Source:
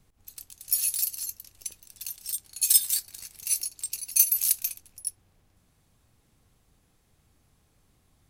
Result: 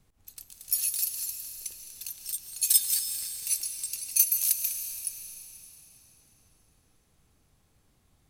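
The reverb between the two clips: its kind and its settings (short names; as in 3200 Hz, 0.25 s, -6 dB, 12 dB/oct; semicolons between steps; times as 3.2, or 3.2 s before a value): digital reverb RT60 4 s, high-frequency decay 0.95×, pre-delay 0.1 s, DRR 5.5 dB; gain -2 dB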